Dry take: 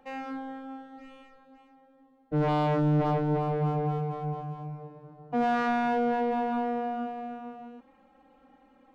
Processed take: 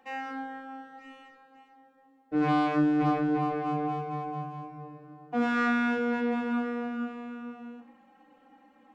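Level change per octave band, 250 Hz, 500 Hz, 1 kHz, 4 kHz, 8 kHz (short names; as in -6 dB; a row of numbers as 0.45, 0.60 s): +2.5 dB, -4.0 dB, -1.5 dB, +1.0 dB, n/a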